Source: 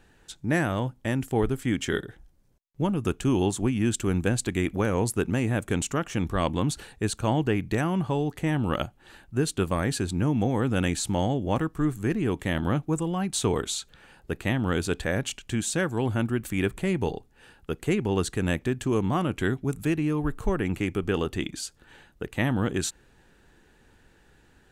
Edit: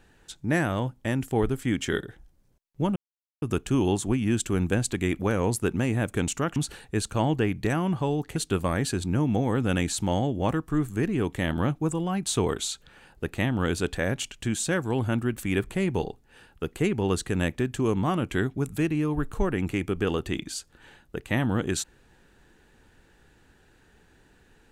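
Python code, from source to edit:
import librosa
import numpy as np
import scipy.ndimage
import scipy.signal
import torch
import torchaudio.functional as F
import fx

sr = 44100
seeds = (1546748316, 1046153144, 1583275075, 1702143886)

y = fx.edit(x, sr, fx.insert_silence(at_s=2.96, length_s=0.46),
    fx.cut(start_s=6.1, length_s=0.54),
    fx.cut(start_s=8.44, length_s=0.99), tone=tone)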